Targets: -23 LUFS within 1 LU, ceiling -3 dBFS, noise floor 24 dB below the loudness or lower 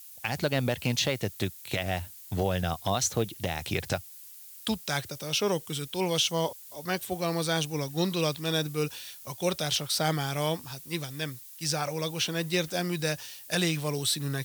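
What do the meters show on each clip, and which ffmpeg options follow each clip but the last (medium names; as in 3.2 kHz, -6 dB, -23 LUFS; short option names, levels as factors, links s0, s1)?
noise floor -48 dBFS; noise floor target -54 dBFS; loudness -30.0 LUFS; peak level -14.5 dBFS; loudness target -23.0 LUFS
-> -af "afftdn=nr=6:nf=-48"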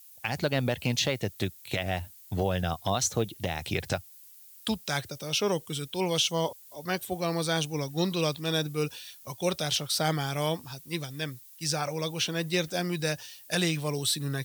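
noise floor -52 dBFS; noise floor target -54 dBFS
-> -af "afftdn=nr=6:nf=-52"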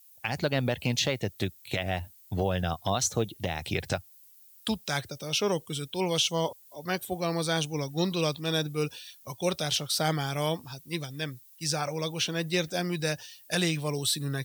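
noise floor -56 dBFS; loudness -30.0 LUFS; peak level -15.0 dBFS; loudness target -23.0 LUFS
-> -af "volume=2.24"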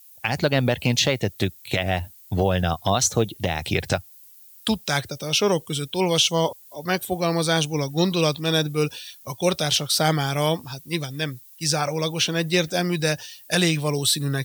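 loudness -23.0 LUFS; peak level -8.0 dBFS; noise floor -49 dBFS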